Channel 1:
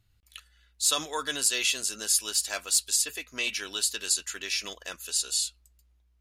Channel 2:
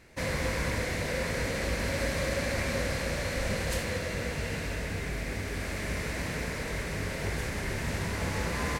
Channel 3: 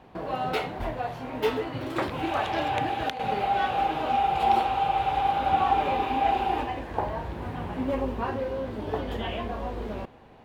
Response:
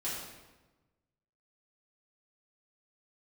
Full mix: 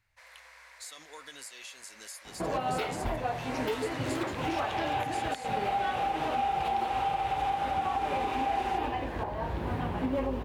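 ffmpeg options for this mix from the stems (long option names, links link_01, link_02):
-filter_complex "[0:a]acompressor=threshold=-33dB:ratio=6,volume=-10.5dB[link_01];[1:a]highpass=frequency=810:width=0.5412,highpass=frequency=810:width=1.3066,highshelf=frequency=4200:gain=-6.5,volume=-4.5dB,afade=type=in:start_time=3.12:duration=0.62:silence=0.237137[link_02];[2:a]alimiter=limit=-16.5dB:level=0:latency=1:release=418,adelay=2250,volume=2dB[link_03];[link_01][link_02][link_03]amix=inputs=3:normalize=0,alimiter=limit=-21.5dB:level=0:latency=1:release=224"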